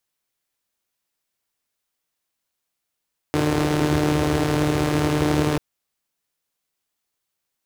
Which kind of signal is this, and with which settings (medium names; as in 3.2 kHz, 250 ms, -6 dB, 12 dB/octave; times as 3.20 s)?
four-cylinder engine model, steady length 2.24 s, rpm 4500, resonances 82/130/310 Hz